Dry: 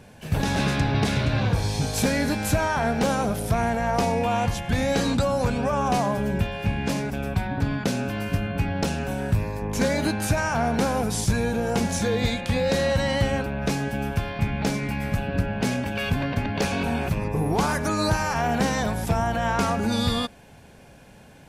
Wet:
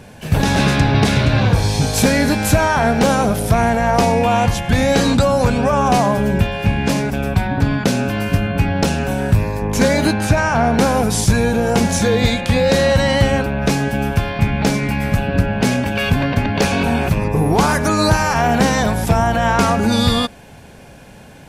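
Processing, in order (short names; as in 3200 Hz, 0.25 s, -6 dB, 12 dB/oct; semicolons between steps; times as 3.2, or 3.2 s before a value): 10.13–10.79 high shelf 7100 Hz -11 dB; gain +8.5 dB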